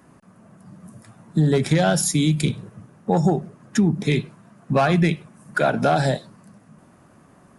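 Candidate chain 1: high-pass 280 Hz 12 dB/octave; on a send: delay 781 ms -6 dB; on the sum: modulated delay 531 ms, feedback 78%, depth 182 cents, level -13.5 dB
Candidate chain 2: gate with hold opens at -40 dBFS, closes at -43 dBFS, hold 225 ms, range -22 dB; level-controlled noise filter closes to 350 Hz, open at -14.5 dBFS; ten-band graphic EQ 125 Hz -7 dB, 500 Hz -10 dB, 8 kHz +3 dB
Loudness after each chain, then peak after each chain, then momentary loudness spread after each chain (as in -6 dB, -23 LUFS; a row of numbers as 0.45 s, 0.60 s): -23.5 LUFS, -25.5 LUFS; -5.5 dBFS, -11.0 dBFS; 10 LU, 10 LU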